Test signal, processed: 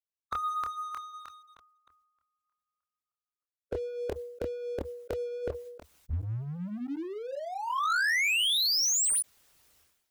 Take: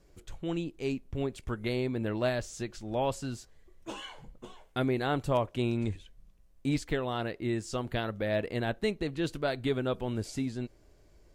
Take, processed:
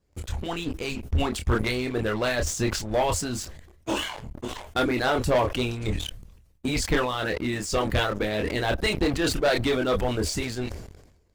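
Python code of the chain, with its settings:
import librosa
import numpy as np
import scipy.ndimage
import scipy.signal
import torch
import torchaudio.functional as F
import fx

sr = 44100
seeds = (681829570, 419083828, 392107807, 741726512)

y = fx.hpss(x, sr, part='harmonic', gain_db=-17)
y = fx.peak_eq(y, sr, hz=75.0, db=9.0, octaves=0.79)
y = fx.chorus_voices(y, sr, voices=6, hz=0.53, base_ms=26, depth_ms=2.4, mix_pct=35)
y = fx.leveller(y, sr, passes=3)
y = fx.sustainer(y, sr, db_per_s=60.0)
y = y * 10.0 ** (4.5 / 20.0)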